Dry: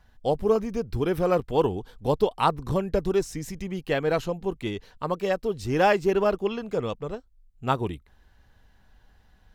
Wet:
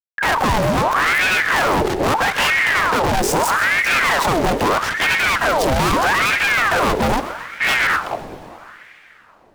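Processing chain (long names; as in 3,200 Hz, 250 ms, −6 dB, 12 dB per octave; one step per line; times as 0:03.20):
noise gate with hold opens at −44 dBFS
pitch-shifted copies added +5 semitones −11 dB
downward compressor, threshold −23 dBFS, peak gain reduction 8 dB
tilt shelving filter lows +5.5 dB, about 1,300 Hz
fuzz pedal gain 53 dB, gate −49 dBFS
on a send: echo with a time of its own for lows and highs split 640 Hz, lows 191 ms, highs 128 ms, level −14 dB
on the sum: dense smooth reverb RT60 4 s, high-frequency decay 0.9×, DRR 13.5 dB
ring modulator whose carrier an LFO sweeps 1,200 Hz, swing 70%, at 0.78 Hz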